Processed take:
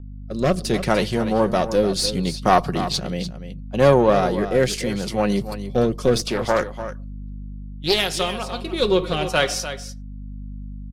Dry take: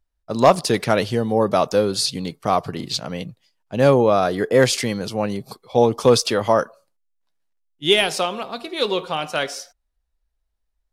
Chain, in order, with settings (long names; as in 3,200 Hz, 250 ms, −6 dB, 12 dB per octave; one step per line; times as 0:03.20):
one-sided soft clipper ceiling −16.5 dBFS
noise gate −34 dBFS, range −12 dB
comb filter 5.5 ms, depth 33%
automatic gain control gain up to 15 dB
mains hum 50 Hz, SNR 13 dB
rotating-speaker cabinet horn 0.7 Hz
single-tap delay 295 ms −11.5 dB
0:06.21–0:08.10: highs frequency-modulated by the lows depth 0.32 ms
level −1 dB